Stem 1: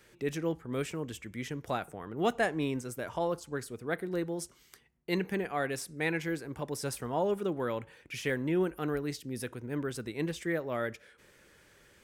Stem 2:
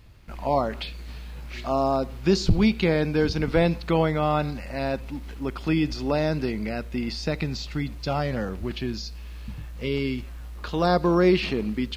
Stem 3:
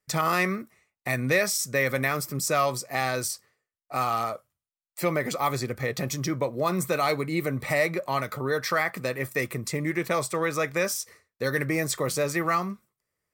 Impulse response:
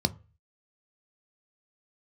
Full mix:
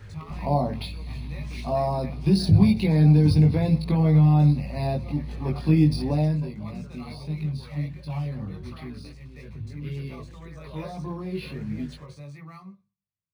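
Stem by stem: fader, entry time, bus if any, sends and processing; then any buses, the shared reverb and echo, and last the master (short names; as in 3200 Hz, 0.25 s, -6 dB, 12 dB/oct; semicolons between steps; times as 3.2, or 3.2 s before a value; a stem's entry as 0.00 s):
-11.0 dB, 0.00 s, no bus, no send, limiter -26 dBFS, peak gain reduction 10 dB; notch comb 170 Hz; three-band squash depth 100%
6.09 s -2.5 dB -> 6.46 s -14.5 dB, 0.00 s, bus A, send -6 dB, limiter -15 dBFS, peak gain reduction 8 dB
-19.5 dB, 0.00 s, bus A, send -7.5 dB, dry
bus A: 0.0 dB, compressor, threshold -36 dBFS, peak gain reduction 13.5 dB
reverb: on, RT60 0.35 s, pre-delay 3 ms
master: chorus voices 6, 0.75 Hz, delay 20 ms, depth 1 ms; decimation joined by straight lines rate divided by 3×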